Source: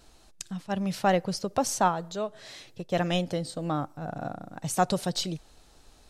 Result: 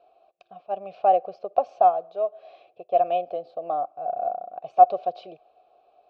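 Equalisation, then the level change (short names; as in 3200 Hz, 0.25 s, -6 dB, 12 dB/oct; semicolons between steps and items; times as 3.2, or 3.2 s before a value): vowel filter a; LPF 4300 Hz 24 dB/oct; band shelf 510 Hz +11 dB 1.3 oct; +3.5 dB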